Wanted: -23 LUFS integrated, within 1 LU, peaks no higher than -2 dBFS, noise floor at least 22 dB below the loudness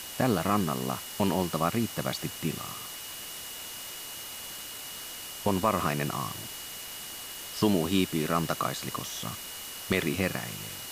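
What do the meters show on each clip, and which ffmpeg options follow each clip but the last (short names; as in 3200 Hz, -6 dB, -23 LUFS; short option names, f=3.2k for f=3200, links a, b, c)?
steady tone 2900 Hz; tone level -46 dBFS; noise floor -41 dBFS; noise floor target -53 dBFS; loudness -31.0 LUFS; peak -11.5 dBFS; loudness target -23.0 LUFS
-> -af "bandreject=f=2.9k:w=30"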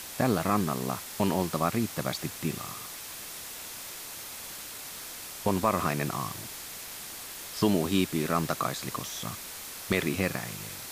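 steady tone none; noise floor -42 dBFS; noise floor target -53 dBFS
-> -af "afftdn=nr=11:nf=-42"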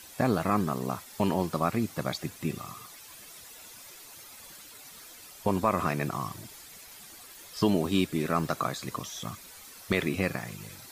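noise floor -49 dBFS; noise floor target -52 dBFS
-> -af "afftdn=nr=6:nf=-49"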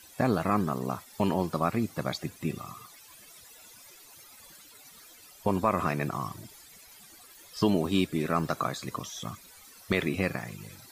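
noise floor -53 dBFS; loudness -30.0 LUFS; peak -12.0 dBFS; loudness target -23.0 LUFS
-> -af "volume=7dB"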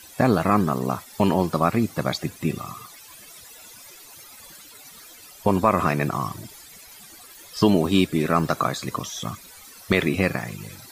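loudness -23.0 LUFS; peak -5.0 dBFS; noise floor -46 dBFS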